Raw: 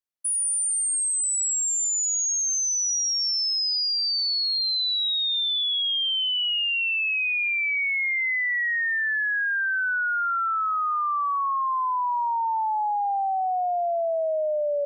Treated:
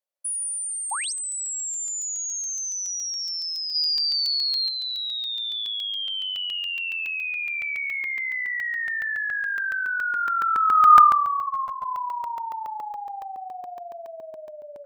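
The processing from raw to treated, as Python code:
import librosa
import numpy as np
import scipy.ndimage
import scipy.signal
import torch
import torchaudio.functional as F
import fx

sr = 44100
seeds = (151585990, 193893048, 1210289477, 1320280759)

y = x + 10.0 ** (-8.0 / 20.0) * np.pad(x, (int(161 * sr / 1000.0), 0))[:len(x)]
y = fx.spec_paint(y, sr, seeds[0], shape='rise', start_s=0.91, length_s=0.22, low_hz=750.0, high_hz=6800.0, level_db=-26.0)
y = fx.rider(y, sr, range_db=10, speed_s=0.5)
y = fx.peak_eq(y, sr, hz=6200.0, db=8.0, octaves=1.4, at=(3.74, 4.68), fade=0.02)
y = fx.filter_sweep_highpass(y, sr, from_hz=570.0, to_hz=1500.0, start_s=9.8, end_s=11.28, q=7.5)
y = fx.peak_eq(y, sr, hz=1100.0, db=8.0, octaves=0.75, at=(1.8, 2.47))
y = fx.buffer_crackle(y, sr, first_s=0.9, period_s=0.14, block=64, kind='zero')
y = fx.ensemble(y, sr, at=(11.41, 11.85), fade=0.02)
y = y * 10.0 ** (-4.5 / 20.0)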